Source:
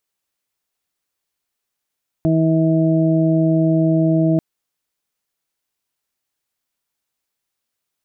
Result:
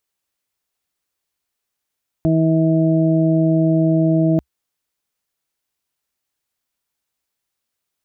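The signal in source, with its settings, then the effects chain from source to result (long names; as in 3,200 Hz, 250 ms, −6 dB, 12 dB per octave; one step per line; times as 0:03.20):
steady harmonic partials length 2.14 s, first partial 161 Hz, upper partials −0.5/−17.5/−6 dB, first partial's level −15.5 dB
parametric band 65 Hz +5 dB 0.62 octaves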